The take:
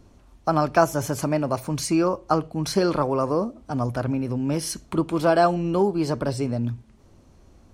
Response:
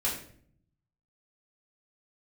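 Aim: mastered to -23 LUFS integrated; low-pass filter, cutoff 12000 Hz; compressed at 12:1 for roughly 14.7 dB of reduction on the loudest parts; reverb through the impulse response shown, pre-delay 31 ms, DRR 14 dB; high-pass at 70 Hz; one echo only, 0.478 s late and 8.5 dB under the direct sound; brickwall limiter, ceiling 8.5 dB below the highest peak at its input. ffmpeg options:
-filter_complex "[0:a]highpass=70,lowpass=12k,acompressor=threshold=-28dB:ratio=12,alimiter=limit=-23.5dB:level=0:latency=1,aecho=1:1:478:0.376,asplit=2[a][b];[1:a]atrim=start_sample=2205,adelay=31[c];[b][c]afir=irnorm=-1:irlink=0,volume=-21dB[d];[a][d]amix=inputs=2:normalize=0,volume=11dB"

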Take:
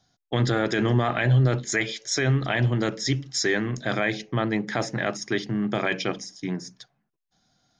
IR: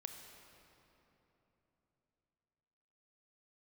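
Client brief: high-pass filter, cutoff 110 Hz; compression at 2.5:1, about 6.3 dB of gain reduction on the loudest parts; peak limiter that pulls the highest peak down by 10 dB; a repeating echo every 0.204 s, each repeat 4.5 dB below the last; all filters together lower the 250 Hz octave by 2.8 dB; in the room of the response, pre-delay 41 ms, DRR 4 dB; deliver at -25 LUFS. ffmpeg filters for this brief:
-filter_complex "[0:a]highpass=110,equalizer=f=250:t=o:g=-3.5,acompressor=threshold=-28dB:ratio=2.5,alimiter=limit=-23.5dB:level=0:latency=1,aecho=1:1:204|408|612|816|1020|1224|1428|1632|1836:0.596|0.357|0.214|0.129|0.0772|0.0463|0.0278|0.0167|0.01,asplit=2[a][b];[1:a]atrim=start_sample=2205,adelay=41[c];[b][c]afir=irnorm=-1:irlink=0,volume=-0.5dB[d];[a][d]amix=inputs=2:normalize=0,volume=5.5dB"

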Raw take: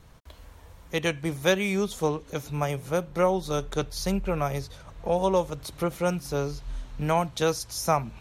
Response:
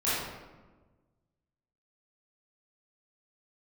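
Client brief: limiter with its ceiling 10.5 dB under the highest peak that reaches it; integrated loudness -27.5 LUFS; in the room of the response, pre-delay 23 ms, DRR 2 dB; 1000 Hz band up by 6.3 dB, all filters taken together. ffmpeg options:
-filter_complex "[0:a]equalizer=f=1k:t=o:g=8,alimiter=limit=-15dB:level=0:latency=1,asplit=2[a][b];[1:a]atrim=start_sample=2205,adelay=23[c];[b][c]afir=irnorm=-1:irlink=0,volume=-13dB[d];[a][d]amix=inputs=2:normalize=0,volume=-1.5dB"

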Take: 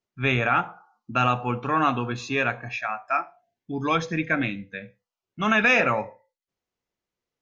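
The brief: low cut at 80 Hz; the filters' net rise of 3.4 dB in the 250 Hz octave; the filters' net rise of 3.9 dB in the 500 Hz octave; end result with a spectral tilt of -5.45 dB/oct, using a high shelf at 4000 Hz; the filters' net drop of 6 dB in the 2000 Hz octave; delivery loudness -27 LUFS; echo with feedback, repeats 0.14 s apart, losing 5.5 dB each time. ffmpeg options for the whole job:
-af "highpass=80,equalizer=f=250:t=o:g=3,equalizer=f=500:t=o:g=4.5,equalizer=f=2k:t=o:g=-6,highshelf=f=4k:g=-9,aecho=1:1:140|280|420|560|700|840|980:0.531|0.281|0.149|0.079|0.0419|0.0222|0.0118,volume=-3dB"

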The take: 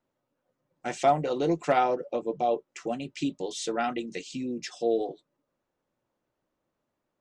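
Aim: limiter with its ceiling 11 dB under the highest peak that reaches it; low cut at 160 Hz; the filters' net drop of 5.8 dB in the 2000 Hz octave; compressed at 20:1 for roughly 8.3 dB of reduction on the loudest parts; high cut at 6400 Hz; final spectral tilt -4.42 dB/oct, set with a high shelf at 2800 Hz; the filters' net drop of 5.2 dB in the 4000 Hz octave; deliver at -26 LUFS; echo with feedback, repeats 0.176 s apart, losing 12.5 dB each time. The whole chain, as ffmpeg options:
-af "highpass=160,lowpass=6.4k,equalizer=f=2k:t=o:g=-8,highshelf=f=2.8k:g=6.5,equalizer=f=4k:t=o:g=-9,acompressor=threshold=-26dB:ratio=20,alimiter=level_in=2dB:limit=-24dB:level=0:latency=1,volume=-2dB,aecho=1:1:176|352|528:0.237|0.0569|0.0137,volume=10.5dB"

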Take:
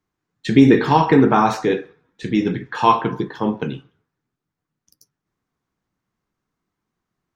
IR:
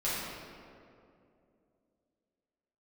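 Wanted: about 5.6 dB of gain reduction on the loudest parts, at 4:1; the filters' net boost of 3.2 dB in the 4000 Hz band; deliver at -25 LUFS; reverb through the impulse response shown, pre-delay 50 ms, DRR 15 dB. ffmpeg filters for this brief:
-filter_complex "[0:a]equalizer=f=4k:t=o:g=4,acompressor=threshold=-13dB:ratio=4,asplit=2[a][b];[1:a]atrim=start_sample=2205,adelay=50[c];[b][c]afir=irnorm=-1:irlink=0,volume=-23dB[d];[a][d]amix=inputs=2:normalize=0,volume=-4.5dB"

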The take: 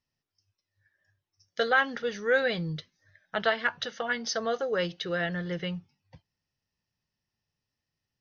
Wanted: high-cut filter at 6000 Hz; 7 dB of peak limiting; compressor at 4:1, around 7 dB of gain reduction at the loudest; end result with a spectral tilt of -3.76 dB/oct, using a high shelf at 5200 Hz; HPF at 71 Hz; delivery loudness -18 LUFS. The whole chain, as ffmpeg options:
-af "highpass=71,lowpass=6k,highshelf=f=5.2k:g=-7,acompressor=threshold=-27dB:ratio=4,volume=16.5dB,alimiter=limit=-7.5dB:level=0:latency=1"

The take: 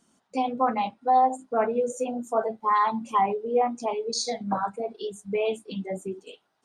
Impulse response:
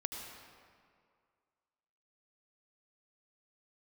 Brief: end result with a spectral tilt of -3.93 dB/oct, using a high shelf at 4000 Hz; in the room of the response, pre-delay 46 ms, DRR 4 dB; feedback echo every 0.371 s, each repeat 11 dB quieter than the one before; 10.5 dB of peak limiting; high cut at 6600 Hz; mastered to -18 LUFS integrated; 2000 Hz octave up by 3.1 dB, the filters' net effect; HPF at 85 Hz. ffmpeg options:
-filter_complex "[0:a]highpass=85,lowpass=6.6k,equalizer=f=2k:t=o:g=5.5,highshelf=f=4k:g=-7.5,alimiter=limit=-21dB:level=0:latency=1,aecho=1:1:371|742|1113:0.282|0.0789|0.0221,asplit=2[a][b];[1:a]atrim=start_sample=2205,adelay=46[c];[b][c]afir=irnorm=-1:irlink=0,volume=-4.5dB[d];[a][d]amix=inputs=2:normalize=0,volume=11.5dB"

